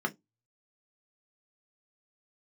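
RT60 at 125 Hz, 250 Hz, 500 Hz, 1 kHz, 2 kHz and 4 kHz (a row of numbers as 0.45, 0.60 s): 0.25, 0.20, 0.20, 0.10, 0.10, 0.15 s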